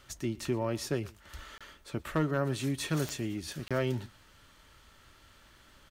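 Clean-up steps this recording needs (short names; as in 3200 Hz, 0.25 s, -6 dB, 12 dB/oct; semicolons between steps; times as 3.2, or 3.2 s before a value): clip repair -20.5 dBFS; de-click; interpolate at 1.58/3.68, 26 ms; inverse comb 0.118 s -22.5 dB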